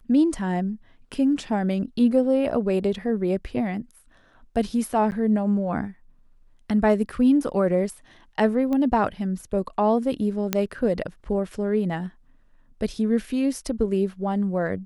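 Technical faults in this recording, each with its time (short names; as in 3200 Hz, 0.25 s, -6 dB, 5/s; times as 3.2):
5.11–5.12 gap 9.9 ms
8.73 pop -17 dBFS
10.53 pop -6 dBFS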